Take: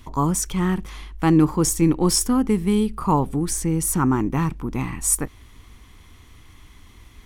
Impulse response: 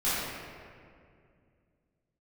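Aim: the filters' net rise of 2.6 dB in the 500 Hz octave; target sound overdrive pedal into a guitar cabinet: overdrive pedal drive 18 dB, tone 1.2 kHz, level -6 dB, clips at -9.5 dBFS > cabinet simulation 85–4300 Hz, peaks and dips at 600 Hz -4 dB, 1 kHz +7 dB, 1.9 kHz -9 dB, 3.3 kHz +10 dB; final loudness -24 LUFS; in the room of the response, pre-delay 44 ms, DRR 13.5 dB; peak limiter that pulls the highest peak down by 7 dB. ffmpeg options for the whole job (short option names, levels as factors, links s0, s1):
-filter_complex "[0:a]equalizer=f=500:t=o:g=4.5,alimiter=limit=0.282:level=0:latency=1,asplit=2[s0][s1];[1:a]atrim=start_sample=2205,adelay=44[s2];[s1][s2]afir=irnorm=-1:irlink=0,volume=0.0562[s3];[s0][s3]amix=inputs=2:normalize=0,asplit=2[s4][s5];[s5]highpass=f=720:p=1,volume=7.94,asoftclip=type=tanh:threshold=0.335[s6];[s4][s6]amix=inputs=2:normalize=0,lowpass=f=1200:p=1,volume=0.501,highpass=85,equalizer=f=600:t=q:w=4:g=-4,equalizer=f=1000:t=q:w=4:g=7,equalizer=f=1900:t=q:w=4:g=-9,equalizer=f=3300:t=q:w=4:g=10,lowpass=f=4300:w=0.5412,lowpass=f=4300:w=1.3066,volume=0.708"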